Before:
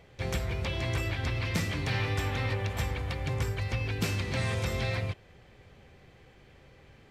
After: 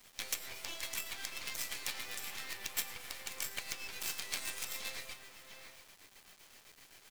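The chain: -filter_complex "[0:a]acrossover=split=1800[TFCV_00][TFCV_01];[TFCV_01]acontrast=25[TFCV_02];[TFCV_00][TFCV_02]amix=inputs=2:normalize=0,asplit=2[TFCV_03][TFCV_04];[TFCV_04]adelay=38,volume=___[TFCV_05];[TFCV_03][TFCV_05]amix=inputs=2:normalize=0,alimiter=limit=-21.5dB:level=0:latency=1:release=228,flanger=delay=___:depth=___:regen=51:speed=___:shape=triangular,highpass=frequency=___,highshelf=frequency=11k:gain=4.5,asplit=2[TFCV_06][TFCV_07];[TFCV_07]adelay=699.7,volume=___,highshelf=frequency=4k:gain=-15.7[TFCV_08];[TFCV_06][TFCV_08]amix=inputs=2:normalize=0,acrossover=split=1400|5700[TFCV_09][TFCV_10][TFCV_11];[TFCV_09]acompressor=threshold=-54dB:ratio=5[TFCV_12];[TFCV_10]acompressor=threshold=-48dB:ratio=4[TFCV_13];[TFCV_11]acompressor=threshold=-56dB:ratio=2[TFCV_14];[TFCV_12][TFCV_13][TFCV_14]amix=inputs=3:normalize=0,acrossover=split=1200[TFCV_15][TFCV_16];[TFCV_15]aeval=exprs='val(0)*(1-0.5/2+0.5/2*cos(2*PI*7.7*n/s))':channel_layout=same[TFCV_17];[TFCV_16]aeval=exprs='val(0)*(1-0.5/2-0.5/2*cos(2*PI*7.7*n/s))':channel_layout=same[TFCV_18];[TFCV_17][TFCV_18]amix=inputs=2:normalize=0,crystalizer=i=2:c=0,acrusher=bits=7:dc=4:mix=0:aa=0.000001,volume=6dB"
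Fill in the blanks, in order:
-12dB, 9.2, 1.7, 0.6, 910, -14dB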